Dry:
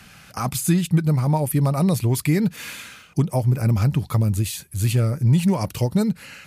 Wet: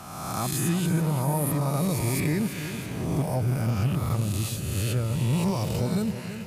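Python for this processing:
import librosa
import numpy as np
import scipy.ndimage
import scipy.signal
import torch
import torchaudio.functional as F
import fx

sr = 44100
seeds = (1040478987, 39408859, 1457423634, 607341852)

y = fx.spec_swells(x, sr, rise_s=1.48)
y = 10.0 ** (-5.5 / 20.0) * np.tanh(y / 10.0 ** (-5.5 / 20.0))
y = fx.echo_feedback(y, sr, ms=330, feedback_pct=58, wet_db=-10.5)
y = y * librosa.db_to_amplitude(-8.0)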